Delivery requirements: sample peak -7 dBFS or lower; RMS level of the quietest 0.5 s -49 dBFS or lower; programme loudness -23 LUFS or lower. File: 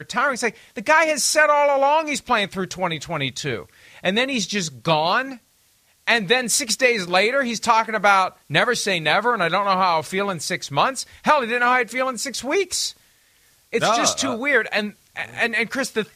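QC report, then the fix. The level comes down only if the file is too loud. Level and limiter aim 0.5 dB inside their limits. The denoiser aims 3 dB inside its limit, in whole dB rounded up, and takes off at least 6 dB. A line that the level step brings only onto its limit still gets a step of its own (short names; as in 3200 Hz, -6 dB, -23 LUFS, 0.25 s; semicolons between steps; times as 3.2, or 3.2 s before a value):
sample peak -3.0 dBFS: fail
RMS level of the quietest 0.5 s -60 dBFS: OK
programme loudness -20.0 LUFS: fail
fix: gain -3.5 dB; limiter -7.5 dBFS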